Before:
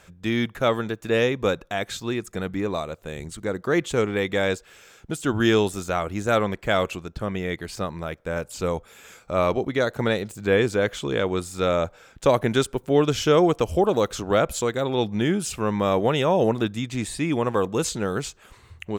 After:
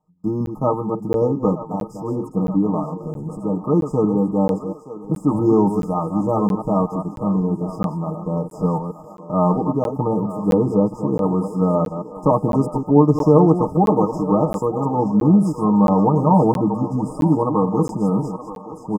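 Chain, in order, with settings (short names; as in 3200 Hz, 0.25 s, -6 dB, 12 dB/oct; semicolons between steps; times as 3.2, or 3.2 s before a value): reverse delay 0.135 s, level -8 dB; FFT band-reject 1300–4900 Hz; gate with hold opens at -36 dBFS; resonant high shelf 4500 Hz -9.5 dB, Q 3; comb 6.5 ms, depth 87%; small resonant body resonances 210/860 Hz, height 15 dB, ringing for 40 ms; on a send: thinning echo 0.924 s, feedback 68%, high-pass 370 Hz, level -12.5 dB; on the sum: crackling interface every 0.67 s, samples 512, zero, from 0.46; gain -3 dB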